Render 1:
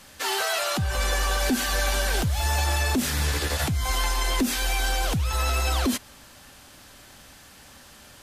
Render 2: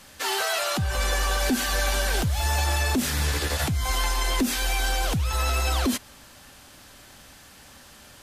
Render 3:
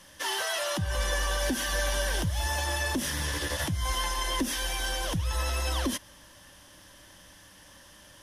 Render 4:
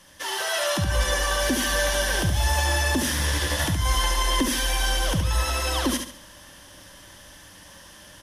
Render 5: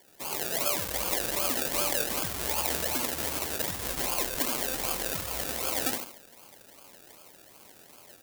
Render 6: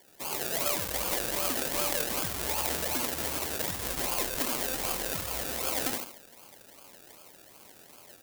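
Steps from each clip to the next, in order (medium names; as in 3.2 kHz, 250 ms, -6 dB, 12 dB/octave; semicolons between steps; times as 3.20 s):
no audible change
rippled EQ curve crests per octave 1.2, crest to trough 8 dB; trim -5 dB
feedback delay 70 ms, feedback 34%, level -6 dB; level rider gain up to 5 dB
decimation with a swept rate 33×, swing 60% 2.6 Hz; RIAA curve recording; trim -6.5 dB
one-sided wavefolder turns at -14 dBFS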